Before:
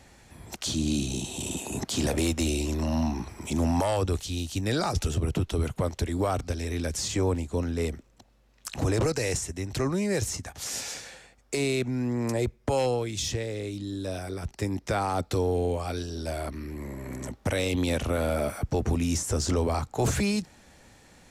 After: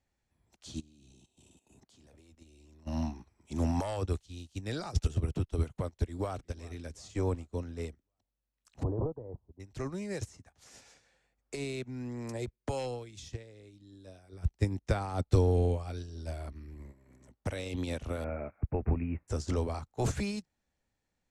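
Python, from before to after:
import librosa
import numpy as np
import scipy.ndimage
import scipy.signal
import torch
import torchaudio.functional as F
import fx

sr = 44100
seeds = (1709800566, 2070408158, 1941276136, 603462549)

y = fx.level_steps(x, sr, step_db=12, at=(0.8, 2.87))
y = fx.echo_throw(y, sr, start_s=5.89, length_s=0.51, ms=370, feedback_pct=55, wet_db=-15.0)
y = fx.ellip_lowpass(y, sr, hz=1000.0, order=4, stop_db=70, at=(8.83, 9.6))
y = fx.band_squash(y, sr, depth_pct=40, at=(10.21, 13.29))
y = fx.low_shelf(y, sr, hz=120.0, db=9.0, at=(14.32, 16.91), fade=0.02)
y = fx.steep_lowpass(y, sr, hz=2600.0, slope=96, at=(18.24, 19.28))
y = scipy.signal.sosfilt(scipy.signal.butter(2, 9600.0, 'lowpass', fs=sr, output='sos'), y)
y = fx.low_shelf(y, sr, hz=63.0, db=7.5)
y = fx.upward_expand(y, sr, threshold_db=-38.0, expansion=2.5)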